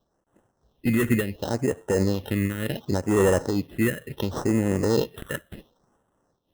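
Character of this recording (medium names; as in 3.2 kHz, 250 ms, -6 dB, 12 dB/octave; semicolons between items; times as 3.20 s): aliases and images of a low sample rate 2.3 kHz, jitter 0%; phasing stages 4, 0.7 Hz, lowest notch 790–4400 Hz; random flutter of the level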